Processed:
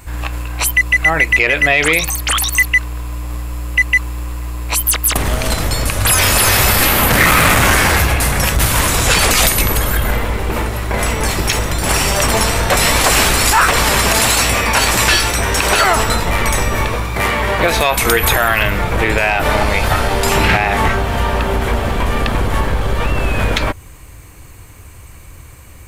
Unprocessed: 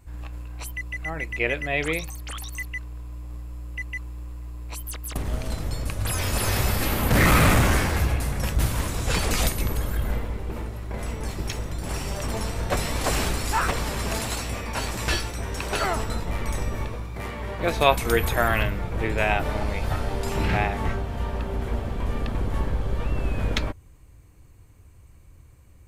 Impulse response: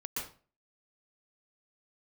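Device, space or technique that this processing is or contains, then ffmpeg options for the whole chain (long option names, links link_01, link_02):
mastering chain: -af "equalizer=frequency=5200:width_type=o:width=1.4:gain=-2.5,acompressor=threshold=-27dB:ratio=2,asoftclip=type=tanh:threshold=-15.5dB,tiltshelf=frequency=650:gain=-5.5,alimiter=level_in=19.5dB:limit=-1dB:release=50:level=0:latency=1,volume=-1.5dB"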